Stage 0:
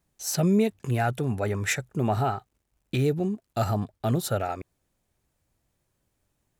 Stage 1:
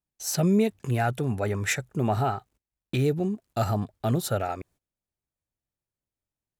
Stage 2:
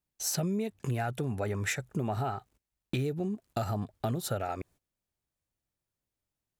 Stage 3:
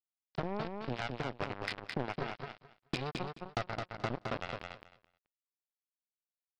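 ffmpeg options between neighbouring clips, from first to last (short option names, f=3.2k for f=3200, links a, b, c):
-af "agate=range=-18dB:threshold=-55dB:ratio=16:detection=peak"
-af "acompressor=threshold=-31dB:ratio=6,volume=2dB"
-af "aresample=11025,acrusher=bits=3:mix=0:aa=0.5,aresample=44100,asoftclip=type=tanh:threshold=-25.5dB,aecho=1:1:215|430|645:0.596|0.101|0.0172,volume=3.5dB"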